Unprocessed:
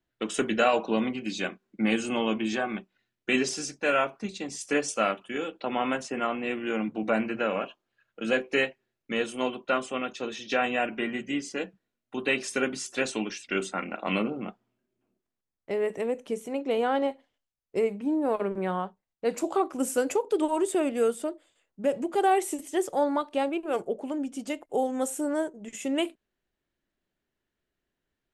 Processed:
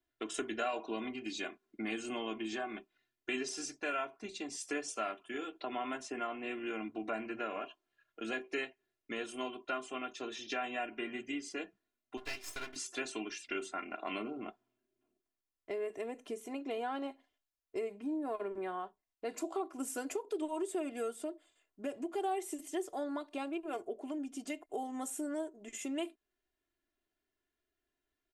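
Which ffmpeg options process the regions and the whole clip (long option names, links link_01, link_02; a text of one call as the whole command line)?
ffmpeg -i in.wav -filter_complex "[0:a]asettb=1/sr,asplit=3[link_01][link_02][link_03];[link_01]atrim=end=12.174[link_04];[link_02]atrim=start=12.17:end=12.76,asetpts=PTS-STARTPTS,afade=type=in:duration=0.004:curve=qsin,afade=type=out:start_time=0.586:duration=0.004:curve=qsin,lowshelf=frequency=470:gain=-11.5,aeval=exprs='max(val(0),0)':channel_layout=same[link_05];[link_03]atrim=start=12.756[link_06];[link_04][link_05]acrossfade=duration=0.004:curve1=hsin:curve2=qsin[link_07];[link_07][link_06]acrossfade=duration=0.004:curve1=qsin:curve2=hsin,lowshelf=frequency=250:gain=-4.5,aecho=1:1:2.9:0.72,acompressor=threshold=-34dB:ratio=2,volume=-5.5dB" out.wav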